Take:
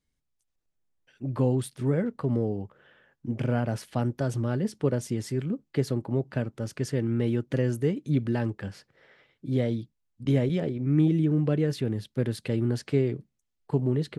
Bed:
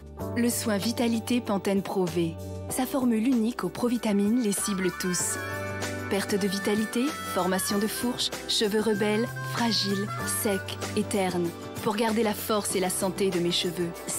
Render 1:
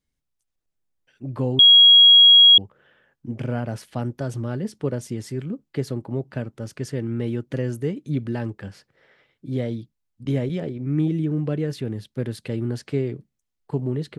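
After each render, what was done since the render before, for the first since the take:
0:01.59–0:02.58: beep over 3,300 Hz −7.5 dBFS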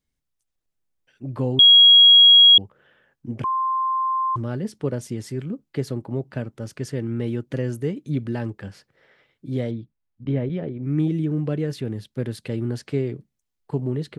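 0:03.44–0:04.36: beep over 1,050 Hz −19.5 dBFS
0:09.71–0:10.83: high-frequency loss of the air 320 metres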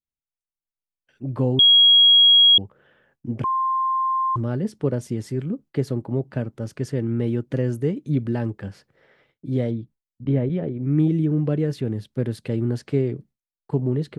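noise gate with hold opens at −52 dBFS
tilt shelving filter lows +3 dB, about 1,300 Hz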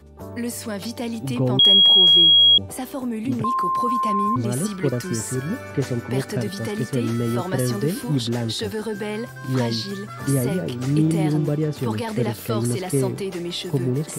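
mix in bed −2.5 dB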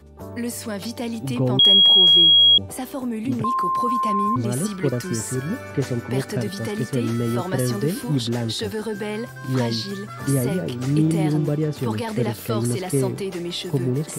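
no processing that can be heard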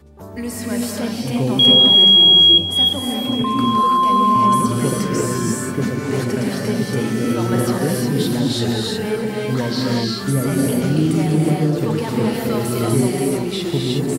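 repeating echo 846 ms, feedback 38%, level −18.5 dB
reverb whose tail is shaped and stops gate 390 ms rising, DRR −3 dB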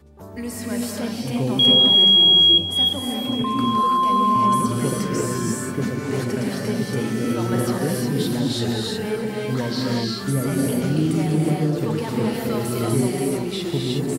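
level −3.5 dB

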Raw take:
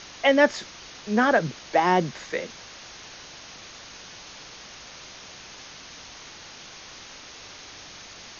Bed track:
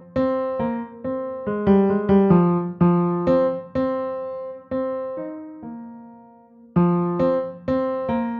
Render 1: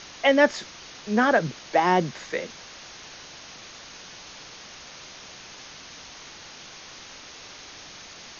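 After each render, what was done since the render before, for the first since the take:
hum removal 50 Hz, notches 2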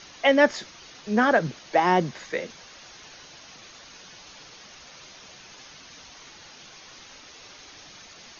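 broadband denoise 6 dB, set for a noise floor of −44 dBFS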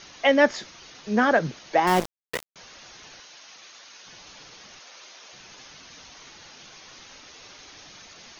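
0:01.87–0:02.56: centre clipping without the shift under −23 dBFS
0:03.20–0:04.07: high-pass filter 760 Hz 6 dB per octave
0:04.79–0:05.33: high-pass filter 410 Hz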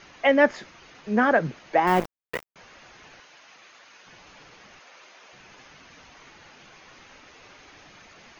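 flat-topped bell 6,700 Hz −9 dB 2.3 octaves
notch filter 5,600 Hz, Q 26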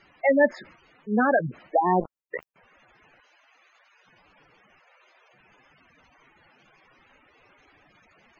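noise gate −47 dBFS, range −7 dB
gate on every frequency bin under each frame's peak −10 dB strong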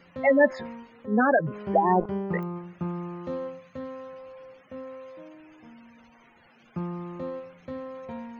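mix in bed track −15 dB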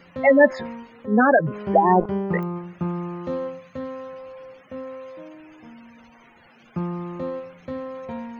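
level +5 dB

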